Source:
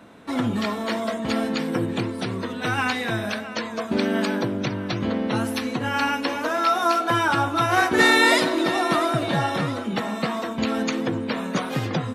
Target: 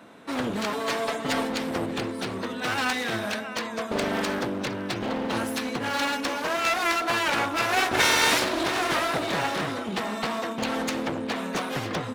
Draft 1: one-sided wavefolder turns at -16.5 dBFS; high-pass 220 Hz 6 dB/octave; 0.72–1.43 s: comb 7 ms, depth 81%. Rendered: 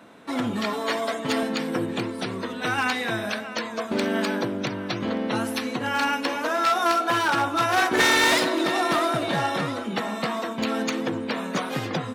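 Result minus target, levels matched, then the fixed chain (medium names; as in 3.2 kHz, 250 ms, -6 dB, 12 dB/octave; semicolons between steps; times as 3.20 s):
one-sided wavefolder: distortion -12 dB
one-sided wavefolder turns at -25.5 dBFS; high-pass 220 Hz 6 dB/octave; 0.72–1.43 s: comb 7 ms, depth 81%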